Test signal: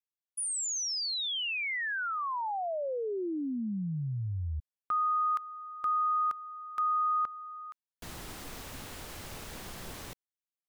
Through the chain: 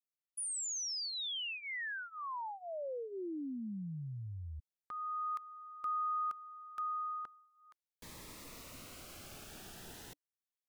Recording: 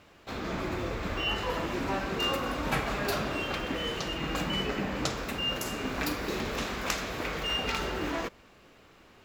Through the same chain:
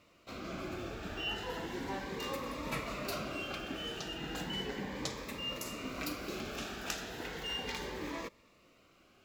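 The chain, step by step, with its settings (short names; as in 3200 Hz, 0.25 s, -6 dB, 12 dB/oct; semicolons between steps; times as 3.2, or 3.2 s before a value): low shelf 140 Hz -6.5 dB; cascading phaser rising 0.35 Hz; gain -5.5 dB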